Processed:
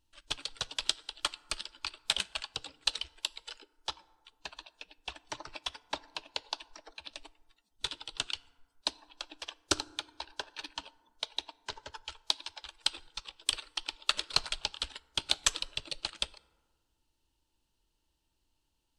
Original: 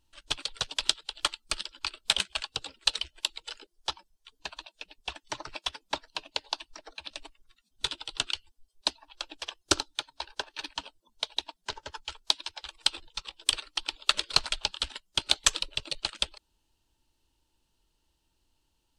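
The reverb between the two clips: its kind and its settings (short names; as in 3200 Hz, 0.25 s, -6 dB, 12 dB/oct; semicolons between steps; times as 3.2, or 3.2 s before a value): FDN reverb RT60 1.5 s, low-frequency decay 1.05×, high-frequency decay 0.4×, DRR 18.5 dB; gain -4.5 dB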